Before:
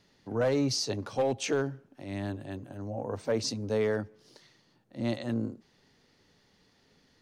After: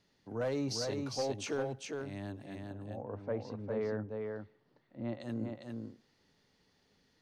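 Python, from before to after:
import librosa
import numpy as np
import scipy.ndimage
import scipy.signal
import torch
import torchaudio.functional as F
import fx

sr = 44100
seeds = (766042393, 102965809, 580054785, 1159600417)

y = fx.lowpass(x, sr, hz=1800.0, slope=12, at=(2.61, 5.19), fade=0.02)
y = y + 10.0 ** (-4.0 / 20.0) * np.pad(y, (int(404 * sr / 1000.0), 0))[:len(y)]
y = y * 10.0 ** (-7.5 / 20.0)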